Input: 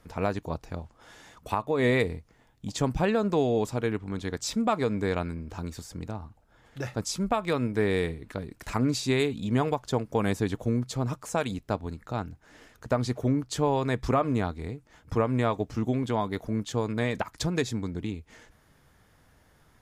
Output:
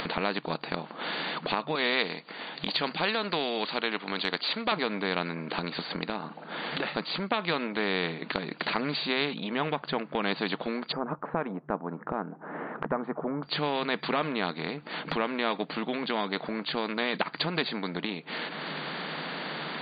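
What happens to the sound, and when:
0:01.75–0:04.72: RIAA equalisation recording
0:09.34–0:10.23: high-frequency loss of the air 260 metres
0:10.92–0:13.43: low-pass filter 1,200 Hz 24 dB per octave
whole clip: brick-wall band-pass 150–4,700 Hz; upward compression, threshold −28 dBFS; every bin compressed towards the loudest bin 2 to 1; level +4.5 dB

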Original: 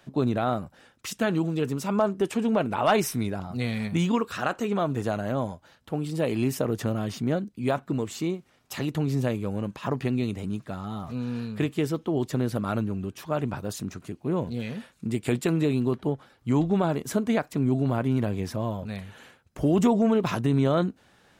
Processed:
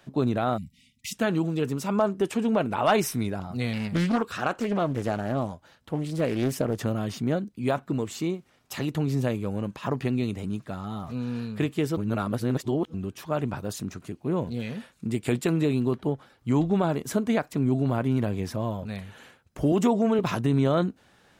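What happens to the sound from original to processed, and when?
0:00.57–0:01.13: time-frequency box erased 260–1,900 Hz
0:03.73–0:06.82: highs frequency-modulated by the lows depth 0.52 ms
0:11.97–0:12.94: reverse
0:19.72–0:20.19: high-pass filter 190 Hz

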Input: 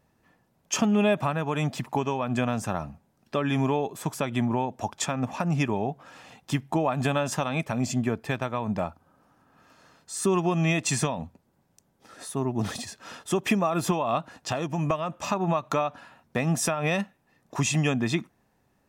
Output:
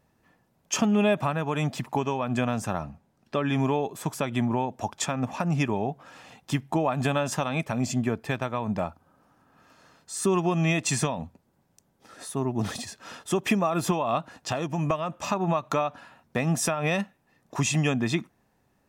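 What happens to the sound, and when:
0:02.79–0:03.60: high-shelf EQ 9,500 Hz −8 dB

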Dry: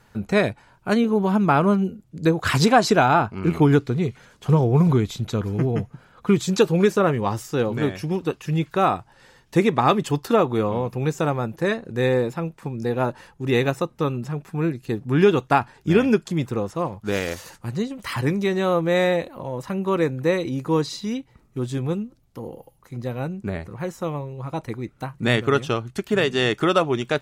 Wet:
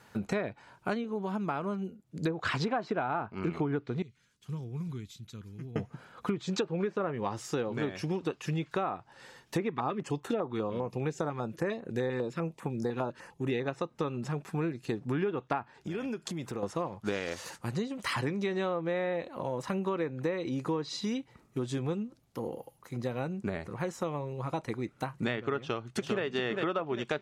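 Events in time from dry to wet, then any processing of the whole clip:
0:00.88–0:02.21: duck −10 dB, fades 0.17 s
0:04.02–0:05.76: guitar amp tone stack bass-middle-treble 6-0-2
0:09.70–0:13.68: notch on a step sequencer 10 Hz 600–4,900 Hz
0:15.75–0:16.63: downward compressor, threshold −31 dBFS
0:25.57–0:26.23: delay throw 400 ms, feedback 35%, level −5.5 dB
whole clip: high-pass filter 190 Hz 6 dB per octave; treble cut that deepens with the level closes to 2,100 Hz, closed at −15 dBFS; downward compressor 6 to 1, threshold −29 dBFS

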